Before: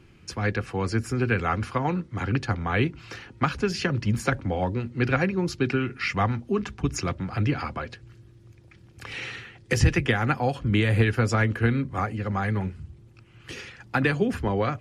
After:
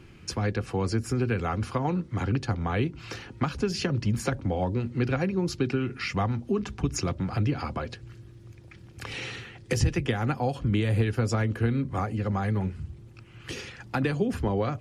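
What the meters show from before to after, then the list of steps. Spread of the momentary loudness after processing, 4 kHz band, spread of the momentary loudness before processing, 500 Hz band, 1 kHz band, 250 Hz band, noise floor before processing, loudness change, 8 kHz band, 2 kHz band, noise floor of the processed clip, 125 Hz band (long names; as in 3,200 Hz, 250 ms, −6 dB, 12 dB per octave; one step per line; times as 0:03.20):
12 LU, −2.0 dB, 14 LU, −2.0 dB, −4.0 dB, −1.5 dB, −53 dBFS, −2.5 dB, 0.0 dB, −7.5 dB, −49 dBFS, −1.5 dB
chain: downward compressor 2 to 1, threshold −29 dBFS, peak gain reduction 8.5 dB
dynamic equaliser 1,800 Hz, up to −7 dB, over −46 dBFS, Q 0.93
level +3.5 dB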